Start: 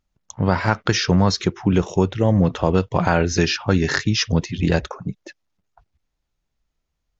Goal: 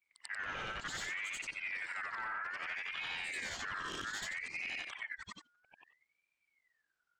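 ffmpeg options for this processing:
-af "afftfilt=real='re':imag='-im':win_size=8192:overlap=0.75,aeval=exprs='(tanh(10*val(0)+0.15)-tanh(0.15))/10':c=same,acompressor=threshold=0.0126:ratio=6,aeval=exprs='val(0)*sin(2*PI*1900*n/s+1900*0.25/0.62*sin(2*PI*0.62*n/s))':c=same,volume=1.12"

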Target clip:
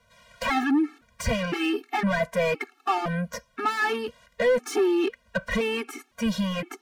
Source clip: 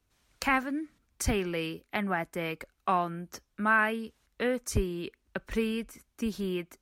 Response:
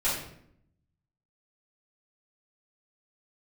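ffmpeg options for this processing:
-filter_complex "[0:a]aeval=exprs='0.251*sin(PI/2*2*val(0)/0.251)':c=same,asplit=2[s0][s1];[s1]highpass=f=720:p=1,volume=14.1,asoftclip=type=tanh:threshold=0.251[s2];[s0][s2]amix=inputs=2:normalize=0,lowpass=f=1600:p=1,volume=0.501,afftfilt=real='re*gt(sin(2*PI*0.98*pts/sr)*(1-2*mod(floor(b*sr/1024/230),2)),0)':imag='im*gt(sin(2*PI*0.98*pts/sr)*(1-2*mod(floor(b*sr/1024/230),2)),0)':win_size=1024:overlap=0.75,volume=0.841"

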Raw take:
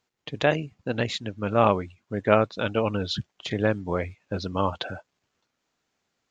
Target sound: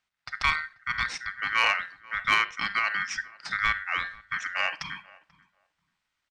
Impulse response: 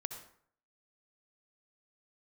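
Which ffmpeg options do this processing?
-filter_complex "[0:a]aemphasis=mode=reproduction:type=cd,asplit=2[s0][s1];[1:a]atrim=start_sample=2205,asetrate=79380,aresample=44100[s2];[s1][s2]afir=irnorm=-1:irlink=0,volume=0.891[s3];[s0][s3]amix=inputs=2:normalize=0,aeval=exprs='val(0)*sin(2*PI*1700*n/s)':c=same,equalizer=f=390:w=0.99:g=-12,acontrast=89,asplit=2[s4][s5];[s5]adelay=487,lowpass=f=1000:p=1,volume=0.112,asplit=2[s6][s7];[s7]adelay=487,lowpass=f=1000:p=1,volume=0.2[s8];[s6][s8]amix=inputs=2:normalize=0[s9];[s4][s9]amix=inputs=2:normalize=0,volume=0.376"

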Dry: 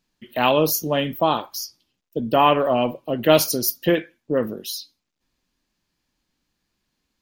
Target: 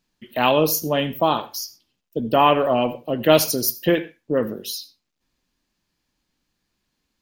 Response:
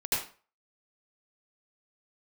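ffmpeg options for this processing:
-filter_complex "[0:a]asplit=2[s0][s1];[1:a]atrim=start_sample=2205,atrim=end_sample=6174[s2];[s1][s2]afir=irnorm=-1:irlink=0,volume=0.0596[s3];[s0][s3]amix=inputs=2:normalize=0"

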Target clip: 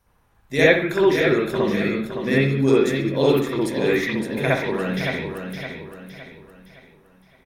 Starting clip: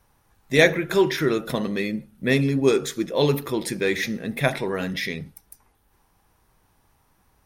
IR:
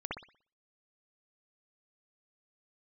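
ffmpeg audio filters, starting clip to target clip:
-filter_complex "[0:a]aecho=1:1:564|1128|1692|2256|2820:0.447|0.179|0.0715|0.0286|0.0114[s0];[1:a]atrim=start_sample=2205[s1];[s0][s1]afir=irnorm=-1:irlink=0,volume=0.891"

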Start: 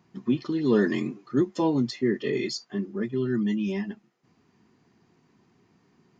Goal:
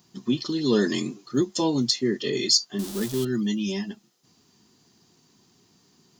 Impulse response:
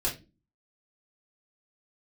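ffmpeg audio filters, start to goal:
-filter_complex "[0:a]asettb=1/sr,asplit=3[s0][s1][s2];[s0]atrim=end=2.794[s3];[s1]atrim=start=2.79:end=3.25,asetpts=PTS-STARTPTS,afade=t=in:d=0.004:c=qsin,afade=t=out:st=0.456:d=0.004:c=qsin,aeval=exprs='val(0)+0.5*0.0158*sgn(val(0))':c=same[s4];[s2]atrim=start=3.246[s5];[s3][s4]acrossfade=d=0.004:c1=hsin:c2=qsin[s6];[s6][s5]acrossfade=d=0.004:c1=qsin:c2=hsin,aexciter=amount=5.6:drive=5.1:freq=3200"

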